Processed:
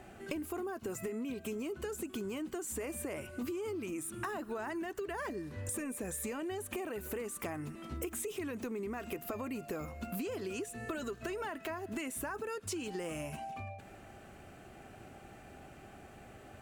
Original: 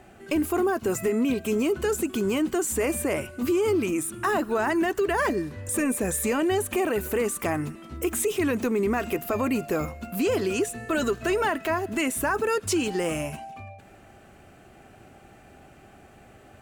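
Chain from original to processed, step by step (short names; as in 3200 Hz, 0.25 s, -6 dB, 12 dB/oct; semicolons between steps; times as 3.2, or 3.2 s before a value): compressor 12:1, threshold -34 dBFS, peak gain reduction 14 dB; gain -2 dB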